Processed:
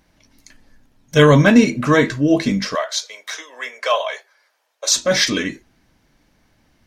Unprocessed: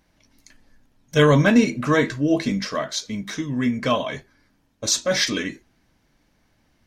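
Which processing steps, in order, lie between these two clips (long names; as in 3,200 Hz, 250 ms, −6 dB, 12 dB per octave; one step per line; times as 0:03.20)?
0:02.75–0:04.96: Butterworth high-pass 510 Hz 36 dB per octave
level +4.5 dB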